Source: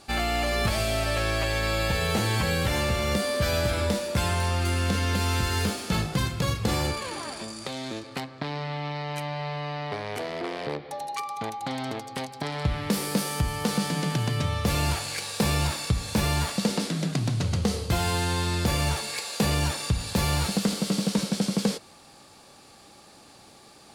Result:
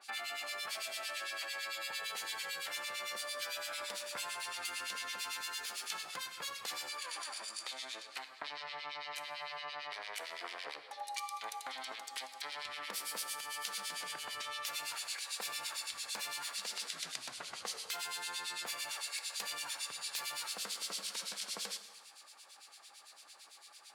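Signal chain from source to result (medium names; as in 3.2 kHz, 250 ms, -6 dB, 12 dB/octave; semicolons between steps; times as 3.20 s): high-pass 1.2 kHz 12 dB/octave; compression, threshold -35 dBFS, peak gain reduction 8 dB; harmonic tremolo 8.9 Hz, depth 100%, crossover 1.9 kHz; on a send: reverberation, pre-delay 3 ms, DRR 11 dB; on the sum: trim +1.5 dB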